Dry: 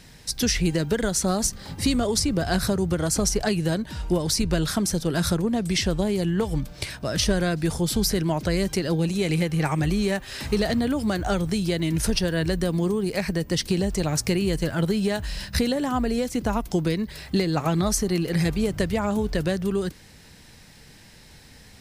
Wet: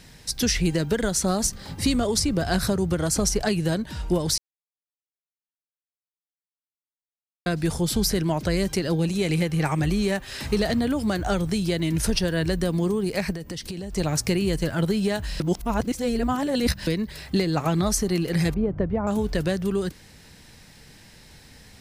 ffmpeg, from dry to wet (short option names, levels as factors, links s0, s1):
-filter_complex "[0:a]asettb=1/sr,asplit=3[s0][s1][s2];[s0]atrim=end=13.324[s3];[s1]atrim=start=13.32:end=13.96,asetpts=PTS-STARTPTS,afade=t=in:d=0.004:c=qsin,afade=t=out:st=0.636:d=0.004:c=qsin,acompressor=threshold=0.0355:ratio=12:attack=3.2:release=140:knee=1:detection=peak[s4];[s2]atrim=start=13.956[s5];[s3][s4]acrossfade=d=0.004:c1=hsin:c2=qsin[s6];[s6][s5]acrossfade=d=0.004:c1=qsin:c2=hsin,asettb=1/sr,asplit=3[s7][s8][s9];[s7]atrim=end=18.544[s10];[s8]atrim=start=18.54:end=19.07,asetpts=PTS-STARTPTS,afade=t=in:d=0.004:c=qsin,afade=t=out:st=0.526:d=0.004:c=qsin,lowpass=1000[s11];[s9]atrim=start=19.066[s12];[s10][s11]acrossfade=d=0.004:c1=hsin:c2=qsin[s13];[s13][s12]acrossfade=d=0.004:c1=qsin:c2=hsin,asplit=5[s14][s15][s16][s17][s18];[s14]atrim=end=4.38,asetpts=PTS-STARTPTS,afade=t=out:st=4.376:d=0.004:c=hsin[s19];[s15]atrim=start=4.38:end=7.46,asetpts=PTS-STARTPTS,volume=0[s20];[s16]atrim=start=7.46:end=15.402,asetpts=PTS-STARTPTS,afade=t=in:d=0.004:c=hsin[s21];[s17]atrim=start=15.398:end=16.872,asetpts=PTS-STARTPTS,areverse[s22];[s18]atrim=start=16.868[s23];[s19][s20][s21]concat=n=3:v=0:a=1[s24];[s24][s22]acrossfade=d=0.004:c1=hsin:c2=hsin[s25];[s25][s23]acrossfade=d=0.004:c1=hsin:c2=hsin"